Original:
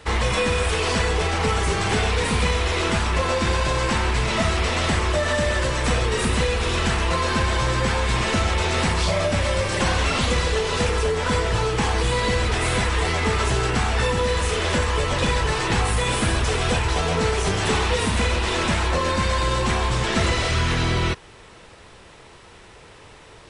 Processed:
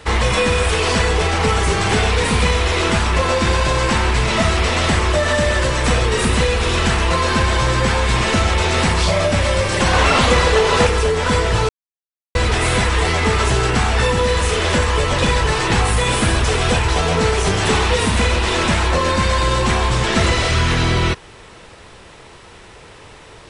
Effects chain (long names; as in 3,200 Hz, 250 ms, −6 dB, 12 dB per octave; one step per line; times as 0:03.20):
0:09.93–0:10.87: parametric band 880 Hz +6 dB 2.7 octaves
0:11.69–0:12.35: silence
level +5 dB